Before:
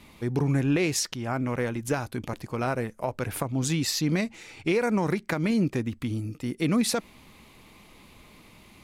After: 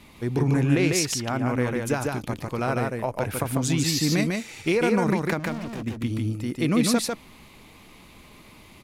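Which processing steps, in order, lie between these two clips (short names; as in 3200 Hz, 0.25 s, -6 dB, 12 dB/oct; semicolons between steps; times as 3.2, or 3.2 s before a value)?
4.08–4.75 high shelf 7500 Hz +10.5 dB; 5.39–5.83 overloaded stage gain 34 dB; echo 0.148 s -3 dB; gain +1.5 dB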